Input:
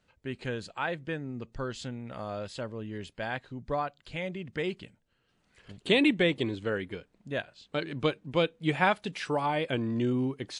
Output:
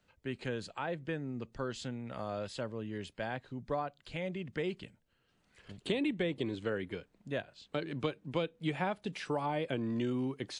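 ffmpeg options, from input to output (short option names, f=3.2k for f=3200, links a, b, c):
-filter_complex "[0:a]acrossover=split=120|770[a][b][c];[a]acompressor=threshold=-50dB:ratio=4[d];[b]acompressor=threshold=-30dB:ratio=4[e];[c]acompressor=threshold=-39dB:ratio=4[f];[d][e][f]amix=inputs=3:normalize=0,volume=-1.5dB"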